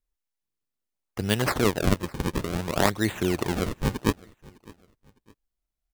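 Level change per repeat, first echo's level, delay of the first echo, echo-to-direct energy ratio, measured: -9.0 dB, -23.5 dB, 0.607 s, -23.0 dB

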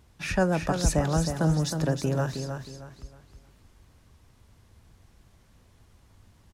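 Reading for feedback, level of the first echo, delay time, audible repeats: 32%, -7.0 dB, 0.315 s, 3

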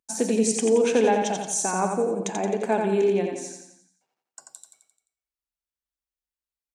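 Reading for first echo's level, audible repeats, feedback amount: -4.5 dB, 6, 50%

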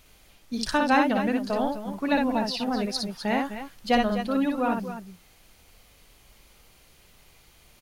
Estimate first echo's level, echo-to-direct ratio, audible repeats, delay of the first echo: -3.5 dB, -2.5 dB, 2, 59 ms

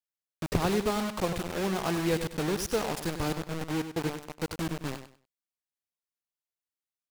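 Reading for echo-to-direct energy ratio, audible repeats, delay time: -10.0 dB, 2, 98 ms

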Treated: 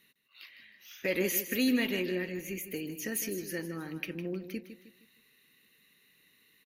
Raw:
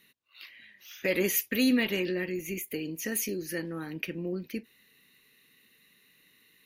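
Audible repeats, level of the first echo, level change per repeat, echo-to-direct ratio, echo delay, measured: 4, -11.0 dB, -8.0 dB, -10.0 dB, 0.156 s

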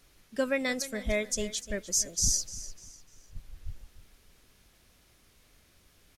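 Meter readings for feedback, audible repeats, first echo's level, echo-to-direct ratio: 34%, 3, -15.5 dB, -15.0 dB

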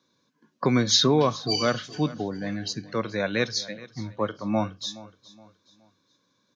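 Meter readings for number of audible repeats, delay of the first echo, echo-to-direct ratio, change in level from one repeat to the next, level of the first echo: 2, 0.42 s, -18.5 dB, -8.5 dB, -19.0 dB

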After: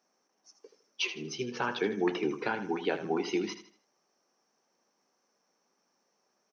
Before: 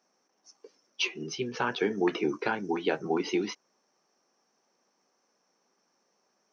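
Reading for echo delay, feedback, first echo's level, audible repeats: 79 ms, 34%, -11.0 dB, 3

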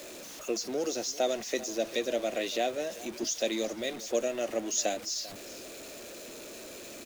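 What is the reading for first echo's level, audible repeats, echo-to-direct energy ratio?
-18.0 dB, 2, -17.5 dB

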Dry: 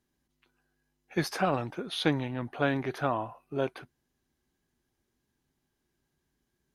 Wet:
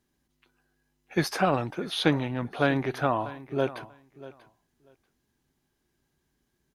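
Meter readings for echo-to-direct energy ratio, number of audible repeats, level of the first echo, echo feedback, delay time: -17.5 dB, 2, -17.5 dB, 16%, 0.639 s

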